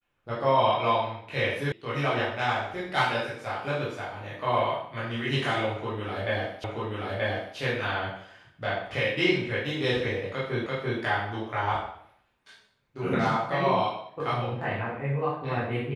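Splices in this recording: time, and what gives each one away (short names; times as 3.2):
1.72 sound cut off
6.64 repeat of the last 0.93 s
10.66 repeat of the last 0.34 s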